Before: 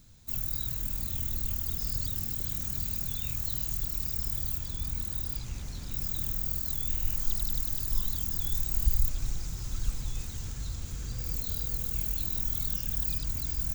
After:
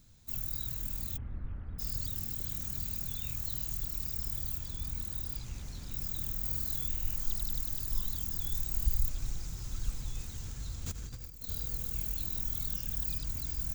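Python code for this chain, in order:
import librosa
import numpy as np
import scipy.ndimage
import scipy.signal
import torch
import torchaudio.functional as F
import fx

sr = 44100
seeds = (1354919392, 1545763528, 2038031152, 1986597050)

y = fx.lowpass(x, sr, hz=1800.0, slope=24, at=(1.16, 1.78), fade=0.02)
y = fx.doubler(y, sr, ms=43.0, db=-2.0, at=(6.39, 6.87))
y = fx.over_compress(y, sr, threshold_db=-39.0, ratio=-0.5, at=(10.85, 11.47), fade=0.02)
y = y * librosa.db_to_amplitude(-4.0)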